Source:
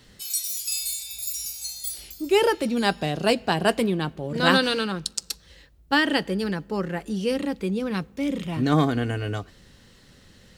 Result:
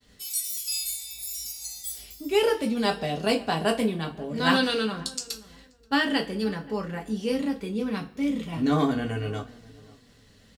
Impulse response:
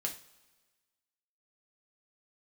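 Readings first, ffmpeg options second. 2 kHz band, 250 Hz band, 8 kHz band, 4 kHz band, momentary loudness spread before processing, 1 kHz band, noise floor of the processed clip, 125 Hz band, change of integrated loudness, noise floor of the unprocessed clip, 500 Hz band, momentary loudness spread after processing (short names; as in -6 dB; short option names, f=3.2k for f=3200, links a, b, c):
-3.5 dB, -1.5 dB, -2.5 dB, -2.5 dB, 10 LU, -3.0 dB, -57 dBFS, -4.5 dB, -2.5 dB, -54 dBFS, -2.5 dB, 10 LU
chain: -filter_complex "[0:a]agate=range=-33dB:threshold=-50dB:ratio=3:detection=peak,asplit=2[a][b];[b]adelay=530,lowpass=f=1.3k:p=1,volume=-20.5dB,asplit=2[c][d];[d]adelay=530,lowpass=f=1.3k:p=1,volume=0.23[e];[a][c][e]amix=inputs=3:normalize=0[f];[1:a]atrim=start_sample=2205,asetrate=70560,aresample=44100[g];[f][g]afir=irnorm=-1:irlink=0"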